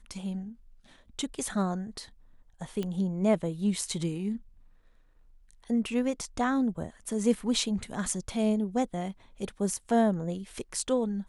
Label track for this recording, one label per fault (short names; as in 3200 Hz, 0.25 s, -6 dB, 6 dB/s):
2.830000	2.830000	pop -21 dBFS